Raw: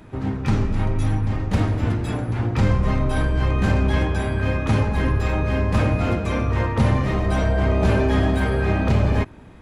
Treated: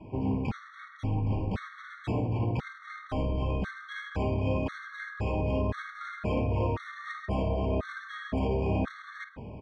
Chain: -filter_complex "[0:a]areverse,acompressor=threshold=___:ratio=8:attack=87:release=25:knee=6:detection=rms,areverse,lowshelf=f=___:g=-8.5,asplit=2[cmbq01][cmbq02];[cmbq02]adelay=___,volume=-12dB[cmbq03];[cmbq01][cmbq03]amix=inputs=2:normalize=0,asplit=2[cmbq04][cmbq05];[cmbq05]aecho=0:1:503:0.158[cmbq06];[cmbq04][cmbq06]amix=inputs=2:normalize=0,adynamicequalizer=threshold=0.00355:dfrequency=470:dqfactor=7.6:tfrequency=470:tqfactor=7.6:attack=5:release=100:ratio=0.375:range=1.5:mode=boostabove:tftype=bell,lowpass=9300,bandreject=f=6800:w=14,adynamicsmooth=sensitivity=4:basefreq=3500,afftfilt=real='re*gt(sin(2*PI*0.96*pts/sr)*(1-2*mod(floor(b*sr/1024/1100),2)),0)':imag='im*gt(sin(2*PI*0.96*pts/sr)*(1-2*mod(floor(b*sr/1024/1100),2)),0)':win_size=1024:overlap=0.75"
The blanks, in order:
-29dB, 70, 50